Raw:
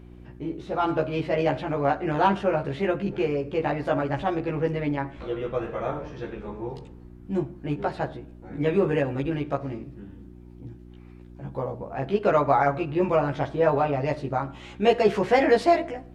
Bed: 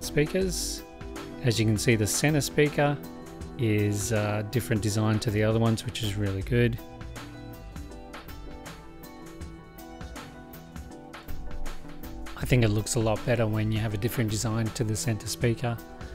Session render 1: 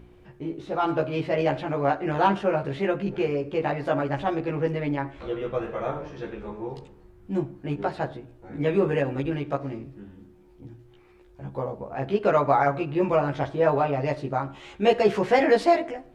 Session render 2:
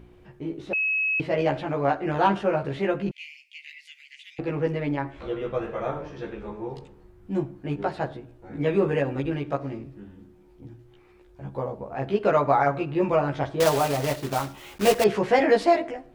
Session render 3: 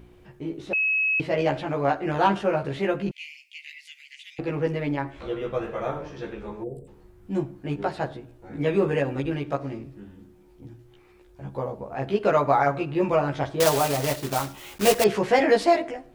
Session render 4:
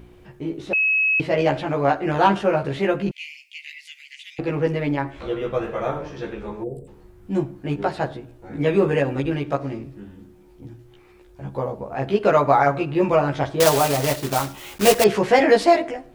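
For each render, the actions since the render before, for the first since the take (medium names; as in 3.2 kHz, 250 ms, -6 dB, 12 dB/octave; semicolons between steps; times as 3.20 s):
de-hum 60 Hz, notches 5
0.73–1.20 s: bleep 2.57 kHz -21.5 dBFS; 3.11–4.39 s: rippled Chebyshev high-pass 2 kHz, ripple 3 dB; 13.60–15.06 s: block-companded coder 3-bit
6.64–6.88 s: time-frequency box 740–7400 Hz -27 dB; treble shelf 4.6 kHz +6.5 dB
trim +4 dB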